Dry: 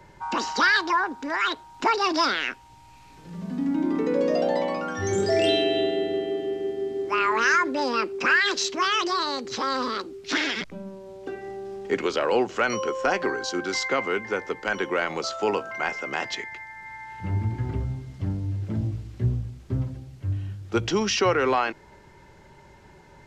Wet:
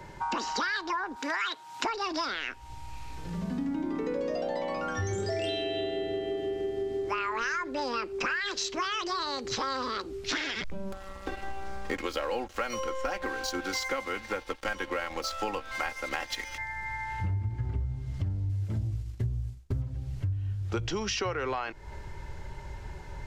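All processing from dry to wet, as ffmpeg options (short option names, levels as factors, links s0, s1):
-filter_complex "[0:a]asettb=1/sr,asplit=3[s0][s1][s2];[s0]atrim=end=1.164[s3];[s1]atrim=start=1.16:end=1.85,asetpts=PTS-STARTPTS,afade=t=in:d=0.004:c=qsin,afade=t=out:st=0.686:d=0.004:c=qsin,highpass=f=130:w=0.5412,highpass=f=130:w=1.3066,tiltshelf=f=790:g=-5.5[s4];[s2]atrim=start=1.846[s5];[s3][s4]acrossfade=d=0.004:c1=hsin:c2=qsin[s6];[s6][s5]acrossfade=d=0.004:c1=qsin:c2=hsin,asettb=1/sr,asplit=3[s7][s8][s9];[s7]atrim=end=10.924[s10];[s8]atrim=start=10.92:end=16.58,asetpts=PTS-STARTPTS,afade=t=in:d=0.004:c=qsin,afade=t=out:st=5.656:d=0.004:c=qsin,aeval=exprs='sgn(val(0))*max(abs(val(0))-0.0112,0)':c=same,acompressor=mode=upward:threshold=0.0126:ratio=2.5:attack=3.2:release=140:knee=2.83:detection=peak,aecho=1:1:3.7:0.66,atrim=end_sample=249606[s11];[s9]atrim=start=16.576[s12];[s10][s11]acrossfade=d=0.004:c1=hsin:c2=qsin[s13];[s13][s12]acrossfade=d=0.004:c1=qsin:c2=hsin,asettb=1/sr,asplit=3[s14][s15][s16];[s14]atrim=end=18.494[s17];[s15]atrim=start=18.49:end=19.82,asetpts=PTS-STARTPTS,afade=t=in:d=0.004:c=qsin,afade=t=out:st=1.326:d=0.004:c=qsin,agate=range=0.0224:threshold=0.02:ratio=3:release=100:detection=peak,highshelf=f=5500:g=11.5[s18];[s16]atrim=start=19.816[s19];[s17][s18]acrossfade=d=0.004:c1=hsin:c2=qsin[s20];[s20][s19]acrossfade=d=0.004:c1=qsin:c2=hsin,asubboost=boost=6:cutoff=82,acompressor=threshold=0.02:ratio=6,volume=1.68"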